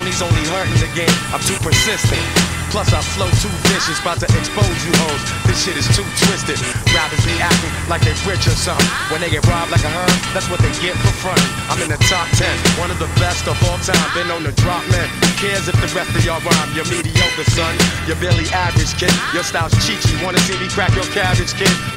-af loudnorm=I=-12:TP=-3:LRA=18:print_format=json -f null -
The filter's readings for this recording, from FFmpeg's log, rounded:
"input_i" : "-15.5",
"input_tp" : "-3.7",
"input_lra" : "0.7",
"input_thresh" : "-25.5",